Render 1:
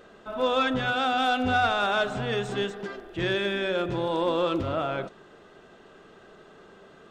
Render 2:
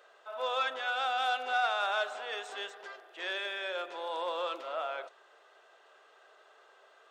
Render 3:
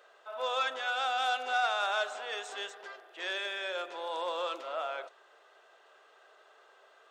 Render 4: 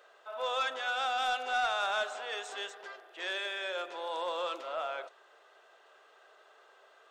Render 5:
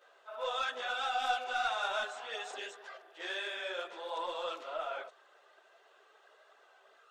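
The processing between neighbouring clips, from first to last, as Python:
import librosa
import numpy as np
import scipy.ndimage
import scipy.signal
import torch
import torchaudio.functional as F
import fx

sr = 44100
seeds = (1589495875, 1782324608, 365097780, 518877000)

y1 = scipy.signal.sosfilt(scipy.signal.butter(4, 560.0, 'highpass', fs=sr, output='sos'), x)
y1 = y1 * 10.0 ** (-5.5 / 20.0)
y2 = fx.dynamic_eq(y1, sr, hz=6900.0, q=1.3, threshold_db=-56.0, ratio=4.0, max_db=6)
y3 = 10.0 ** (-21.5 / 20.0) * np.tanh(y2 / 10.0 ** (-21.5 / 20.0))
y4 = fx.chorus_voices(y3, sr, voices=4, hz=1.5, base_ms=15, depth_ms=3.0, mix_pct=65)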